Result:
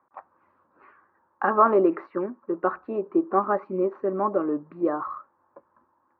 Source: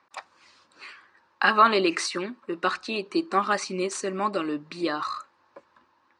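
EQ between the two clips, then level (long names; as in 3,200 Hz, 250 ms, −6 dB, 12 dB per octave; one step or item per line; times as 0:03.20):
low-pass filter 1,300 Hz 24 dB per octave
dynamic equaliser 490 Hz, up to +7 dB, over −38 dBFS, Q 0.82
−1.5 dB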